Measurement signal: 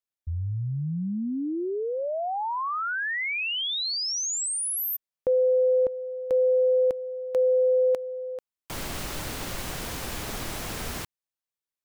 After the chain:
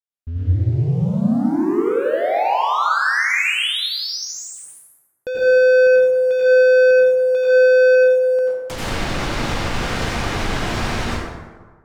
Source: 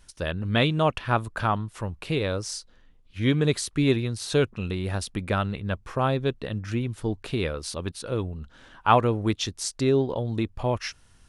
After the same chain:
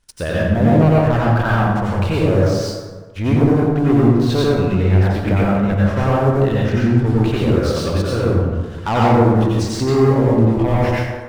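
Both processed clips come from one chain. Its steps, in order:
treble cut that deepens with the level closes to 750 Hz, closed at −21.5 dBFS
leveller curve on the samples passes 3
dense smooth reverb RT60 1.4 s, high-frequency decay 0.5×, pre-delay 75 ms, DRR −6.5 dB
level −4 dB

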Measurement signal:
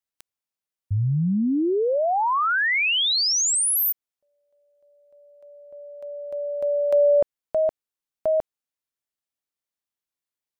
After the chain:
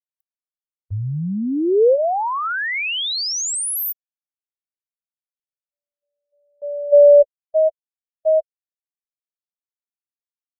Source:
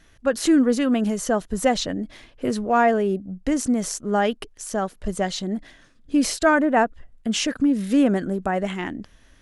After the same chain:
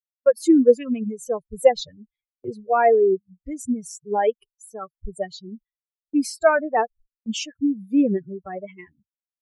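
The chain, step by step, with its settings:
spectral dynamics exaggerated over time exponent 3
noise gate with hold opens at −46 dBFS, hold 152 ms, range −19 dB
parametric band 480 Hz +12.5 dB 0.92 octaves

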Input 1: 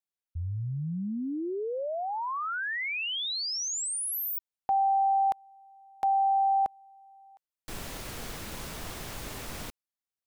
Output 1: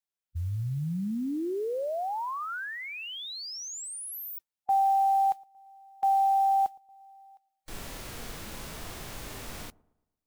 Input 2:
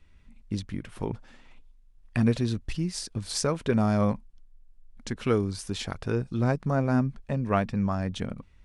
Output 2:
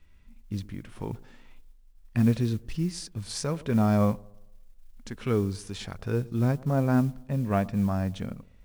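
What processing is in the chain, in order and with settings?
delay with a low-pass on its return 114 ms, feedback 44%, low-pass 910 Hz, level −22.5 dB
harmonic and percussive parts rebalanced percussive −8 dB
noise that follows the level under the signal 30 dB
level +1.5 dB

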